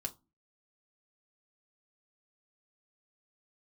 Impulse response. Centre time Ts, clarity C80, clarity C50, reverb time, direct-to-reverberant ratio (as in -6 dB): 5 ms, 28.0 dB, 20.5 dB, 0.25 s, 3.5 dB